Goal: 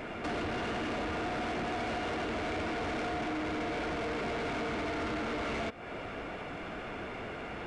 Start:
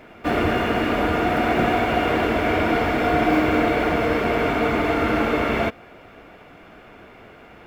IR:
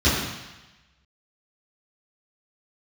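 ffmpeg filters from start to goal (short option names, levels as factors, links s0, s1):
-af "acompressor=threshold=0.0251:ratio=6,asoftclip=type=tanh:threshold=0.0126,aresample=22050,aresample=44100,volume=2"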